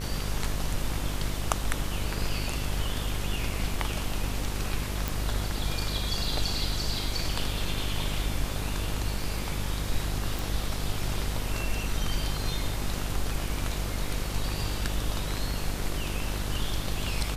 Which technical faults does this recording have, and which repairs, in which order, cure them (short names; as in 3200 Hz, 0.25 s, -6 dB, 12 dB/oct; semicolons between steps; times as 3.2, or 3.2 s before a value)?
buzz 50 Hz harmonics 38 -33 dBFS
5.08 pop
10.39 pop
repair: de-click; de-hum 50 Hz, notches 38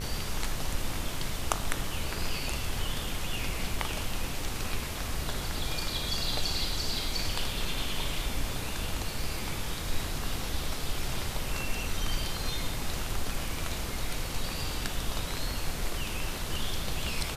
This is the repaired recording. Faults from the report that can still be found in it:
none